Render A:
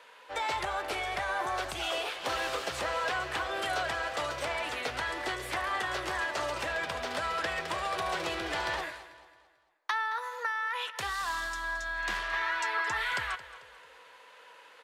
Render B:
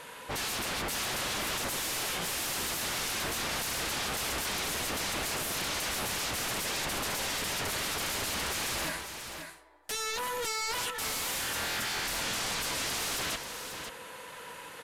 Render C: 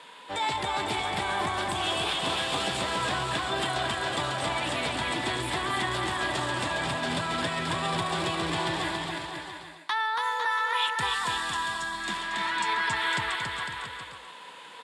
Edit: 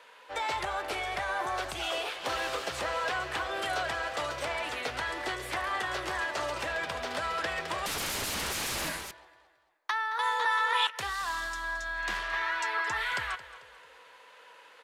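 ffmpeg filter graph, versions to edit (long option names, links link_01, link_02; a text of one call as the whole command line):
ffmpeg -i take0.wav -i take1.wav -i take2.wav -filter_complex "[0:a]asplit=3[link_01][link_02][link_03];[link_01]atrim=end=7.862[link_04];[1:a]atrim=start=7.858:end=9.112[link_05];[link_02]atrim=start=9.108:end=10.192[link_06];[2:a]atrim=start=10.188:end=10.872[link_07];[link_03]atrim=start=10.868[link_08];[link_04][link_05]acrossfade=duration=0.004:curve1=hsin:curve2=hsin[link_09];[link_09][link_06]acrossfade=duration=0.004:curve1=hsin:curve2=hsin[link_10];[link_10][link_07]acrossfade=duration=0.004:curve1=hsin:curve2=hsin[link_11];[link_11][link_08]acrossfade=duration=0.004:curve1=hsin:curve2=hsin" out.wav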